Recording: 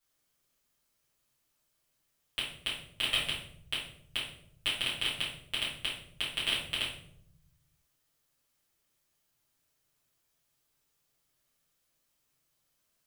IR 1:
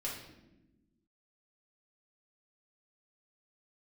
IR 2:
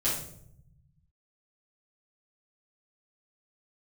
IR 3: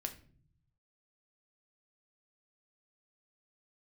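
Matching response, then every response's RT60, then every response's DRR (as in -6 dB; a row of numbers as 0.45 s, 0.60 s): 2; 1.0 s, 0.70 s, 0.50 s; -5.5 dB, -9.5 dB, 4.5 dB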